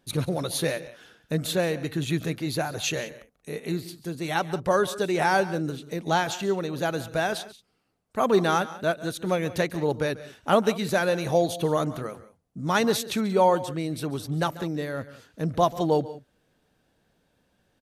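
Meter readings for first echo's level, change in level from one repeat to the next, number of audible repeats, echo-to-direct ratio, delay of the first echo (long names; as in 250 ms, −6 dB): −18.0 dB, repeats not evenly spaced, 2, −15.5 dB, 140 ms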